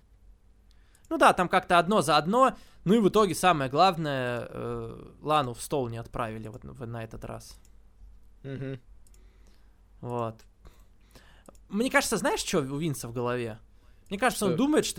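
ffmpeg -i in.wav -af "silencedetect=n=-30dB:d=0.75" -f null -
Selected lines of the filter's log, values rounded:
silence_start: 0.00
silence_end: 1.11 | silence_duration: 1.11
silence_start: 7.36
silence_end: 8.47 | silence_duration: 1.10
silence_start: 8.74
silence_end: 10.04 | silence_duration: 1.29
silence_start: 10.30
silence_end: 11.74 | silence_duration: 1.44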